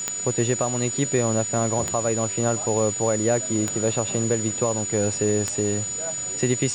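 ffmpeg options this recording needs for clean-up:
ffmpeg -i in.wav -af "adeclick=threshold=4,bandreject=frequency=6900:width=30,afwtdn=0.011" out.wav

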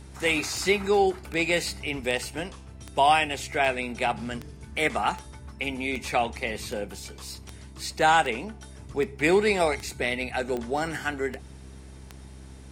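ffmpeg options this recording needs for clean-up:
ffmpeg -i in.wav -af "adeclick=threshold=4,bandreject=frequency=65.8:width_type=h:width=4,bandreject=frequency=131.6:width_type=h:width=4,bandreject=frequency=197.4:width_type=h:width=4,bandreject=frequency=263.2:width_type=h:width=4,bandreject=frequency=329:width_type=h:width=4,bandreject=frequency=394.8:width_type=h:width=4" out.wav

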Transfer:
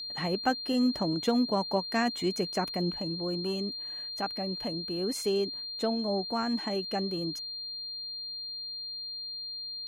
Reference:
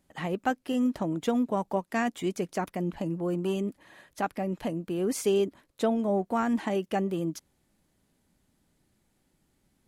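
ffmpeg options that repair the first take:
ffmpeg -i in.wav -af "bandreject=frequency=4200:width=30,asetnsamples=nb_out_samples=441:pad=0,asendcmd='2.94 volume volume 4dB',volume=0dB" out.wav

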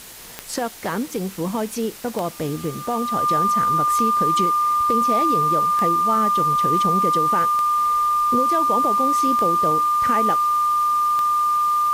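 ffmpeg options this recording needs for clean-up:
ffmpeg -i in.wav -af "adeclick=threshold=4,bandreject=frequency=1200:width=30,afwtdn=0.011" out.wav

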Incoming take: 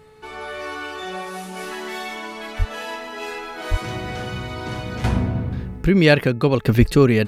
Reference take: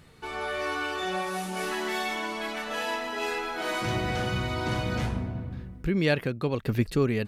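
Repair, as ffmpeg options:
ffmpeg -i in.wav -filter_complex "[0:a]bandreject=frequency=431.1:width_type=h:width=4,bandreject=frequency=862.2:width_type=h:width=4,bandreject=frequency=1293.3:width_type=h:width=4,bandreject=frequency=1724.4:width_type=h:width=4,bandreject=frequency=2155.5:width_type=h:width=4,bandreject=frequency=2586.6:width_type=h:width=4,asplit=3[link_01][link_02][link_03];[link_01]afade=type=out:start_time=2.58:duration=0.02[link_04];[link_02]highpass=frequency=140:width=0.5412,highpass=frequency=140:width=1.3066,afade=type=in:start_time=2.58:duration=0.02,afade=type=out:start_time=2.7:duration=0.02[link_05];[link_03]afade=type=in:start_time=2.7:duration=0.02[link_06];[link_04][link_05][link_06]amix=inputs=3:normalize=0,asplit=3[link_07][link_08][link_09];[link_07]afade=type=out:start_time=3.7:duration=0.02[link_10];[link_08]highpass=frequency=140:width=0.5412,highpass=frequency=140:width=1.3066,afade=type=in:start_time=3.7:duration=0.02,afade=type=out:start_time=3.82:duration=0.02[link_11];[link_09]afade=type=in:start_time=3.82:duration=0.02[link_12];[link_10][link_11][link_12]amix=inputs=3:normalize=0,asplit=3[link_13][link_14][link_15];[link_13]afade=type=out:start_time=6.79:duration=0.02[link_16];[link_14]highpass=frequency=140:width=0.5412,highpass=frequency=140:width=1.3066,afade=type=in:start_time=6.79:duration=0.02,afade=type=out:start_time=6.91:duration=0.02[link_17];[link_15]afade=type=in:start_time=6.91:duration=0.02[link_18];[link_16][link_17][link_18]amix=inputs=3:normalize=0,asetnsamples=nb_out_samples=441:pad=0,asendcmd='5.04 volume volume -10.5dB',volume=0dB" out.wav

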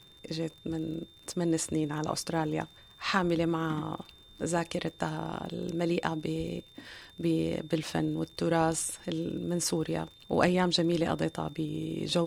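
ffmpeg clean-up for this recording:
ffmpeg -i in.wav -af "adeclick=threshold=4,bandreject=frequency=3600:width=30,agate=range=-21dB:threshold=-47dB" out.wav

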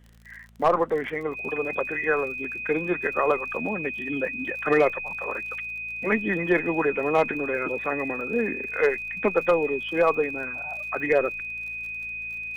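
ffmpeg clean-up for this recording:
ffmpeg -i in.wav -af "adeclick=threshold=4,bandreject=frequency=56.1:width_type=h:width=4,bandreject=frequency=112.2:width_type=h:width=4,bandreject=frequency=168.3:width_type=h:width=4,bandreject=frequency=224.4:width_type=h:width=4,bandreject=frequency=2500:width=30" out.wav

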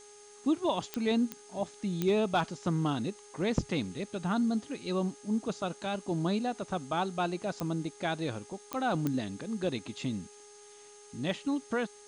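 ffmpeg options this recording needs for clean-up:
ffmpeg -i in.wav -af "adeclick=threshold=4,bandreject=frequency=413.4:width_type=h:width=4,bandreject=frequency=826.8:width_type=h:width=4,bandreject=frequency=1240.2:width_type=h:width=4,bandreject=frequency=1653.6:width_type=h:width=4,bandreject=frequency=2067:width_type=h:width=4,bandreject=frequency=6400:width=30,afftdn=noise_reduction=24:noise_floor=-53" out.wav

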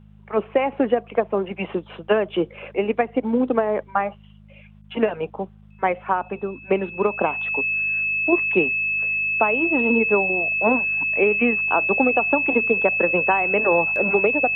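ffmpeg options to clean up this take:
ffmpeg -i in.wav -af "bandreject=frequency=51.8:width_type=h:width=4,bandreject=frequency=103.6:width_type=h:width=4,bandreject=frequency=155.4:width_type=h:width=4,bandreject=frequency=207.2:width_type=h:width=4,bandreject=frequency=2600:width=30" out.wav

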